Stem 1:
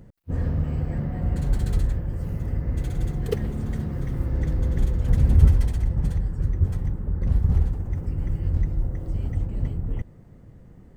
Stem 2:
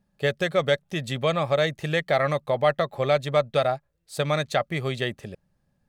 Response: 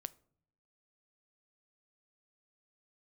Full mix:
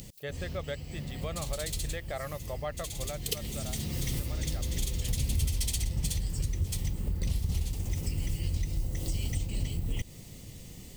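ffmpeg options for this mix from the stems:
-filter_complex "[0:a]aexciter=amount=13.7:drive=5.8:freq=2.4k,volume=0.5dB[a];[1:a]volume=-15dB,afade=t=out:st=2.84:d=0.43:silence=0.421697,asplit=2[b][c];[c]apad=whole_len=483510[d];[a][d]sidechaincompress=threshold=-48dB:ratio=12:attack=20:release=817[e];[e][b]amix=inputs=2:normalize=0,acompressor=threshold=-28dB:ratio=4"

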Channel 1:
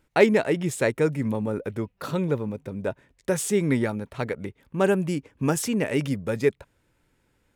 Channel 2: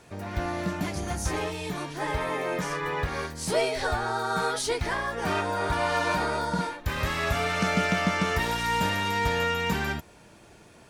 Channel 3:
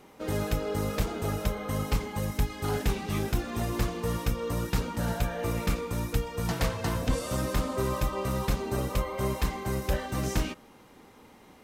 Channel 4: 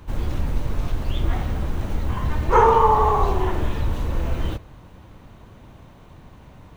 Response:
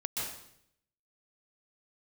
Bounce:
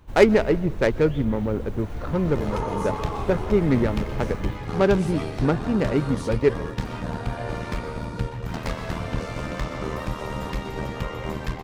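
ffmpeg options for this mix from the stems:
-filter_complex "[0:a]adynamicsmooth=sensitivity=1:basefreq=650,volume=2dB,asplit=2[a][b];[b]volume=-21dB[c];[1:a]adelay=1600,volume=-12dB[d];[2:a]adynamicsmooth=sensitivity=7.5:basefreq=2.5k,tremolo=f=78:d=0.974,adelay=2050,volume=0.5dB,asplit=2[e][f];[f]volume=-8dB[g];[3:a]alimiter=limit=-12.5dB:level=0:latency=1:release=227,volume=-9dB[h];[4:a]atrim=start_sample=2205[i];[c][g]amix=inputs=2:normalize=0[j];[j][i]afir=irnorm=-1:irlink=0[k];[a][d][e][h][k]amix=inputs=5:normalize=0"

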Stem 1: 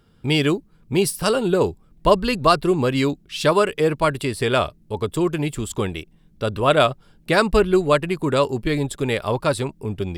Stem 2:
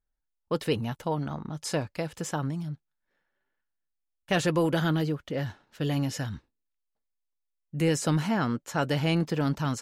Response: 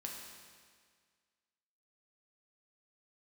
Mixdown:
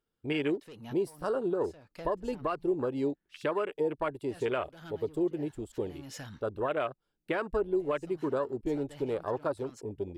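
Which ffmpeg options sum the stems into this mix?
-filter_complex "[0:a]afwtdn=0.0631,lowshelf=f=250:t=q:w=1.5:g=-6.5,volume=-9dB,asplit=2[a][b];[1:a]lowshelf=f=150:g=-11.5,acompressor=threshold=-33dB:ratio=2,asoftclip=type=tanh:threshold=-30.5dB,volume=-3.5dB[c];[b]apad=whole_len=432839[d];[c][d]sidechaincompress=threshold=-44dB:ratio=5:attack=16:release=276[e];[a][e]amix=inputs=2:normalize=0,alimiter=limit=-21dB:level=0:latency=1:release=194"

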